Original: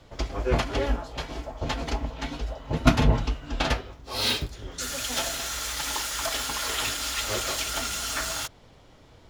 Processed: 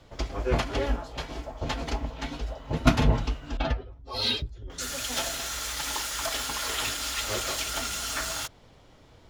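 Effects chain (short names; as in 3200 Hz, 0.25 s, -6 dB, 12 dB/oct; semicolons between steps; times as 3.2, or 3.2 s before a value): 3.57–4.7 spectral contrast raised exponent 1.7; gain -1.5 dB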